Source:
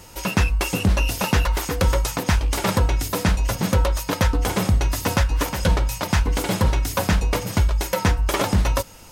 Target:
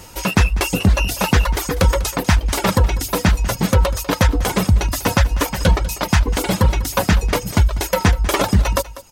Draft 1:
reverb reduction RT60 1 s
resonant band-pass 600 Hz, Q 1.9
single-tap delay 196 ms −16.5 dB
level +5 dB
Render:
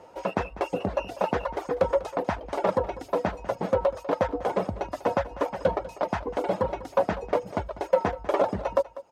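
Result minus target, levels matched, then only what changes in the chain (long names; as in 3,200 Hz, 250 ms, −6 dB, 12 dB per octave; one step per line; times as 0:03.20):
500 Hz band +9.0 dB
remove: resonant band-pass 600 Hz, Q 1.9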